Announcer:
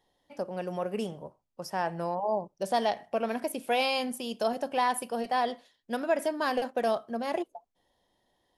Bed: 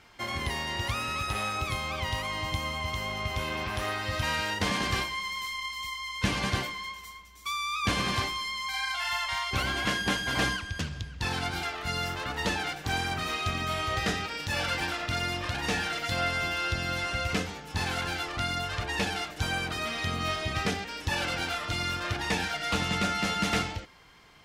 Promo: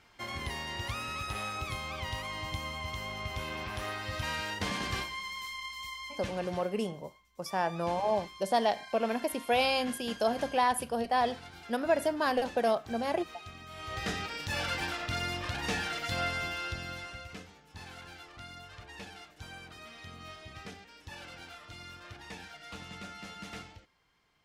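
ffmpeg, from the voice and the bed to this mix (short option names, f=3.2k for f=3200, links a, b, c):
-filter_complex "[0:a]adelay=5800,volume=0dB[a];[1:a]volume=8dB,afade=t=out:st=6.05:d=0.29:silence=0.266073,afade=t=in:st=13.71:d=0.51:silence=0.211349,afade=t=out:st=16.22:d=1.07:silence=0.223872[b];[a][b]amix=inputs=2:normalize=0"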